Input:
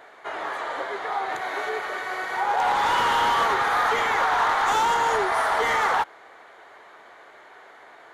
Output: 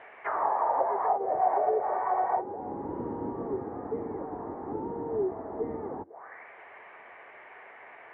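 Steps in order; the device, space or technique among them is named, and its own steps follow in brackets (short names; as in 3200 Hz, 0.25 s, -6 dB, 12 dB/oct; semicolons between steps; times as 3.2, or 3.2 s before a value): envelope filter bass rig (envelope low-pass 310–3100 Hz down, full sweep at -21.5 dBFS; speaker cabinet 61–2200 Hz, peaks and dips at 90 Hz +4 dB, 310 Hz -4 dB, 1400 Hz -7 dB); gain -2 dB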